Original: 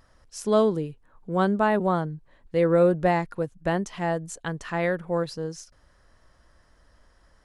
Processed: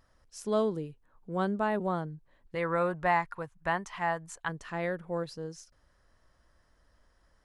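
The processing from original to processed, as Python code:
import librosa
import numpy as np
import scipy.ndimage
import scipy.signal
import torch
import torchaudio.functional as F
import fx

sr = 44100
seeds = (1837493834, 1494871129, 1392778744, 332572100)

y = fx.graphic_eq(x, sr, hz=(250, 500, 1000, 2000), db=(-8, -5, 11, 6), at=(2.55, 4.49))
y = y * librosa.db_to_amplitude(-7.5)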